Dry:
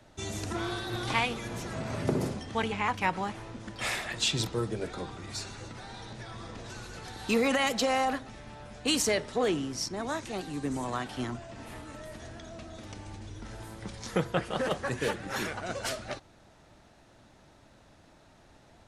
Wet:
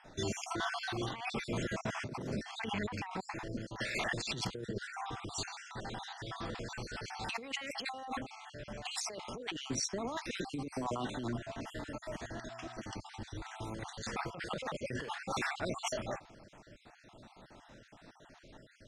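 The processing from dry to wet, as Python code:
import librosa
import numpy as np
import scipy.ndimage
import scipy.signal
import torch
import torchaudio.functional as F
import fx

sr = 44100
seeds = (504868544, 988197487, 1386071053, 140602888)

y = fx.spec_dropout(x, sr, seeds[0], share_pct=48)
y = scipy.signal.sosfilt(scipy.signal.butter(2, 6900.0, 'lowpass', fs=sr, output='sos'), y)
y = fx.peak_eq(y, sr, hz=70.0, db=-8.5, octaves=0.76)
y = fx.over_compress(y, sr, threshold_db=-38.0, ratio=-1.0)
y = fx.dmg_buzz(y, sr, base_hz=120.0, harmonics=3, level_db=-59.0, tilt_db=-8, odd_only=False, at=(12.25, 12.82), fade=0.02)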